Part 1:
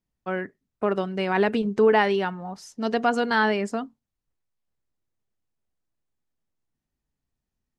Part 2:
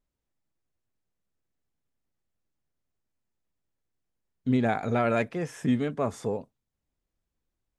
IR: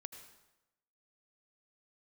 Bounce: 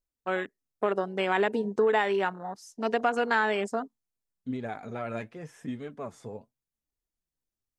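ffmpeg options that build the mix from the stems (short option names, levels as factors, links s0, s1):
-filter_complex "[0:a]afwtdn=0.02,bass=f=250:g=-11,treble=f=4000:g=14,acompressor=threshold=0.0891:ratio=6,volume=1.06[s0];[1:a]flanger=delay=1.7:depth=8:regen=49:speed=0.86:shape=triangular,volume=0.501[s1];[s0][s1]amix=inputs=2:normalize=0"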